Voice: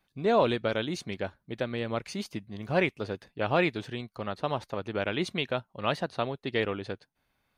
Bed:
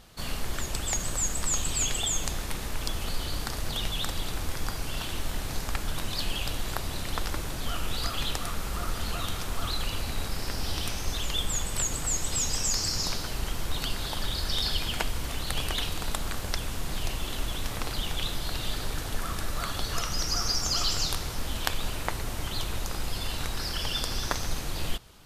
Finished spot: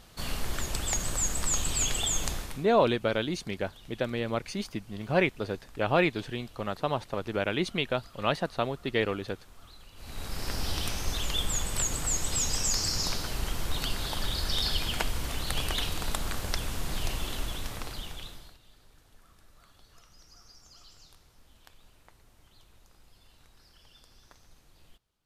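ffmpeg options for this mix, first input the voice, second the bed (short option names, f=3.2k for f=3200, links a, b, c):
-filter_complex "[0:a]adelay=2400,volume=1dB[a];[1:a]volume=20.5dB,afade=t=out:st=2.29:d=0.37:silence=0.0891251,afade=t=in:st=9.95:d=0.57:silence=0.0891251,afade=t=out:st=17.17:d=1.41:silence=0.0446684[b];[a][b]amix=inputs=2:normalize=0"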